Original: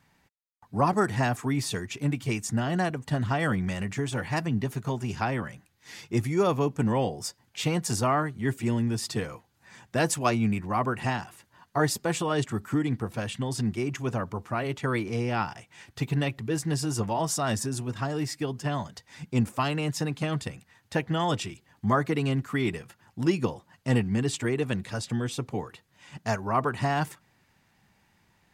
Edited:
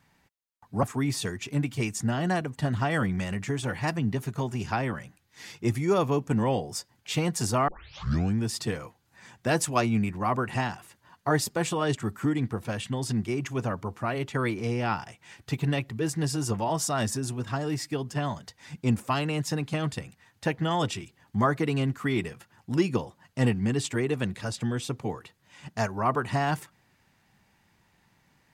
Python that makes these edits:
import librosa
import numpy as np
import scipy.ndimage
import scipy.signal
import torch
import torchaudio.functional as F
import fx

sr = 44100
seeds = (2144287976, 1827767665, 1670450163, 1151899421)

y = fx.edit(x, sr, fx.cut(start_s=0.83, length_s=0.49),
    fx.tape_start(start_s=8.17, length_s=0.72), tone=tone)